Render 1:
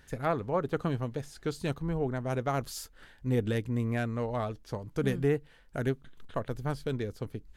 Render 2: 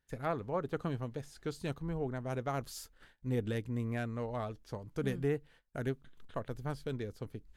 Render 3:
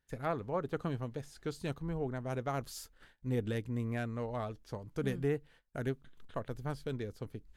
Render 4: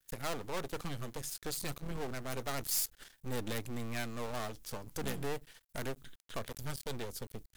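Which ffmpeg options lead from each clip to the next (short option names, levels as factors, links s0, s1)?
-af "agate=range=0.112:threshold=0.00224:ratio=16:detection=peak,volume=0.531"
-af anull
-af "aeval=exprs='(tanh(28.2*val(0)+0.75)-tanh(0.75))/28.2':c=same,aeval=exprs='max(val(0),0)':c=same,crystalizer=i=4.5:c=0,volume=3.16"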